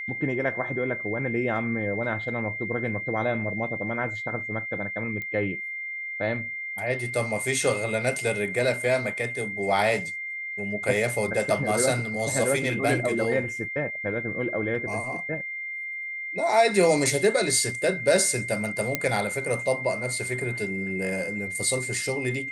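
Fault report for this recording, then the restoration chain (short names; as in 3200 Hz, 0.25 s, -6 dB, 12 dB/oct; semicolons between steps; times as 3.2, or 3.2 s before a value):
tone 2100 Hz -31 dBFS
5.22 pop -21 dBFS
18.95 pop -7 dBFS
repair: de-click; notch 2100 Hz, Q 30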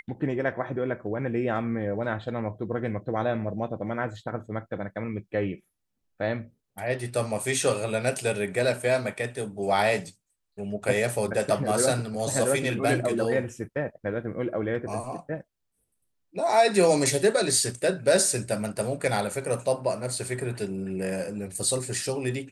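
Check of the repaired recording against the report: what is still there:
none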